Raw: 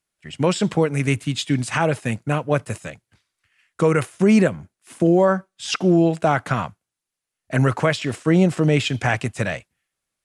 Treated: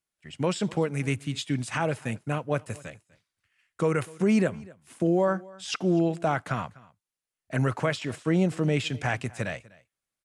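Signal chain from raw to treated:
single-tap delay 248 ms −22.5 dB
level −7.5 dB

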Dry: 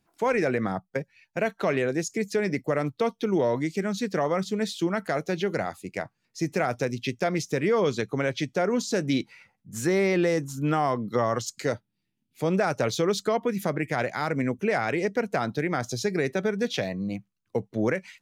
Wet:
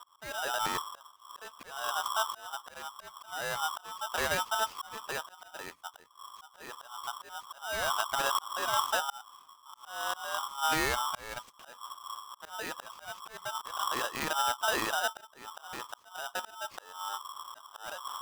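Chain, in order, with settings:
running median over 15 samples
wind on the microphone 83 Hz −31 dBFS
dynamic equaliser 250 Hz, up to +4 dB, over −37 dBFS, Q 1.3
volume swells 509 ms
ring modulator with a square carrier 1,100 Hz
level −6 dB

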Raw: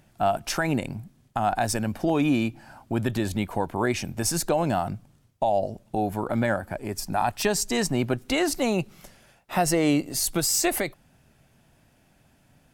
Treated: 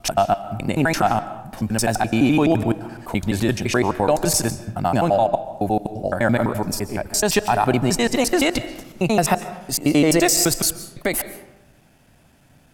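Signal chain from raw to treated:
slices reordered back to front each 85 ms, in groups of 6
comb and all-pass reverb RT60 0.95 s, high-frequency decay 0.6×, pre-delay 100 ms, DRR 13 dB
level +6 dB

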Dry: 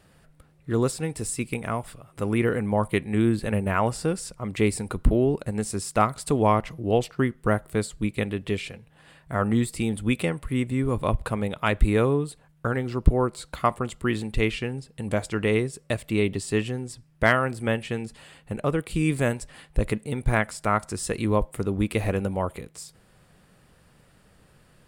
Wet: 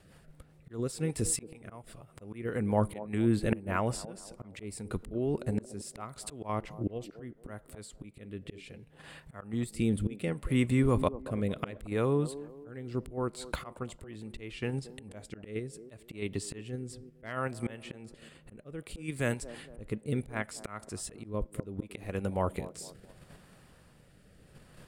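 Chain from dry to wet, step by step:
rotating-speaker cabinet horn 5 Hz, later 0.7 Hz, at 0:04.69
volume swells 659 ms
delay with a band-pass on its return 227 ms, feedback 35%, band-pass 450 Hz, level −12 dB
in parallel at −1 dB: output level in coarse steps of 19 dB

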